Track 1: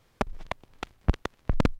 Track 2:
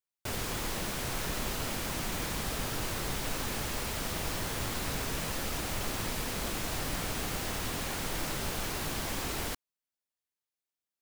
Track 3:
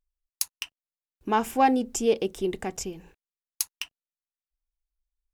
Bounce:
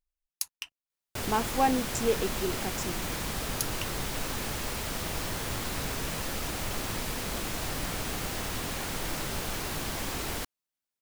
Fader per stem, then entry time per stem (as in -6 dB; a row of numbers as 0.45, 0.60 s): off, +1.0 dB, -4.5 dB; off, 0.90 s, 0.00 s